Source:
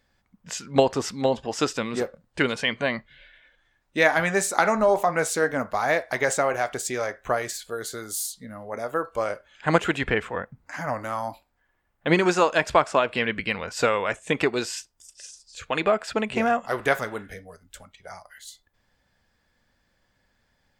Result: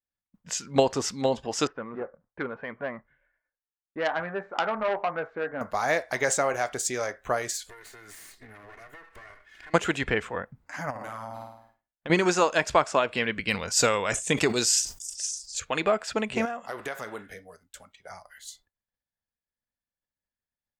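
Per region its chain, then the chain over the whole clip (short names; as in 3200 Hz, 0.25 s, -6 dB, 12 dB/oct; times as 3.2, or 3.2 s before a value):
1.67–5.61 LPF 1500 Hz 24 dB/oct + low shelf 420 Hz -8.5 dB + core saturation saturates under 2100 Hz
7.69–9.74 minimum comb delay 2.8 ms + bell 1900 Hz +12 dB 0.67 oct + compressor 12:1, threshold -41 dBFS
10.9–12.1 flutter echo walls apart 9.1 m, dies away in 0.76 s + compressor 10:1, threshold -30 dBFS
13.48–15.6 tone controls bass +4 dB, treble +11 dB + sustainer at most 130 dB/s
16.45–18.1 low shelf 150 Hz -10 dB + compressor 4:1, threshold -28 dBFS
whole clip: expander -52 dBFS; dynamic EQ 6400 Hz, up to +6 dB, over -47 dBFS, Q 1.5; gain -2.5 dB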